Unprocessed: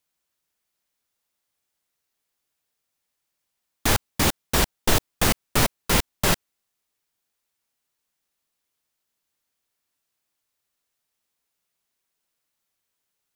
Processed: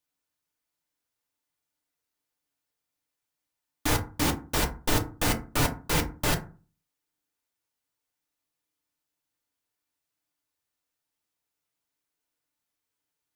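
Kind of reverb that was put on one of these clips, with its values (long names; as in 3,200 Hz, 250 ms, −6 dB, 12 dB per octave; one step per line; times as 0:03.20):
feedback delay network reverb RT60 0.36 s, low-frequency decay 1.35×, high-frequency decay 0.45×, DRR 1.5 dB
level −7 dB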